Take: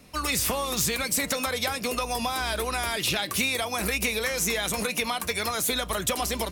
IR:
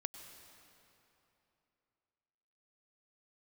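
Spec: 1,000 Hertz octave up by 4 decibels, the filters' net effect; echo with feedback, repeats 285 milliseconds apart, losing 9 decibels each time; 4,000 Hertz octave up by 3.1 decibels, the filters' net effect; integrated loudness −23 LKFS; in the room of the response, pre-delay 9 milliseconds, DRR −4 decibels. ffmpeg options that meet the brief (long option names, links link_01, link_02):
-filter_complex "[0:a]equalizer=frequency=1000:width_type=o:gain=5,equalizer=frequency=4000:width_type=o:gain=3.5,aecho=1:1:285|570|855|1140:0.355|0.124|0.0435|0.0152,asplit=2[link_01][link_02];[1:a]atrim=start_sample=2205,adelay=9[link_03];[link_02][link_03]afir=irnorm=-1:irlink=0,volume=6dB[link_04];[link_01][link_04]amix=inputs=2:normalize=0,volume=-4.5dB"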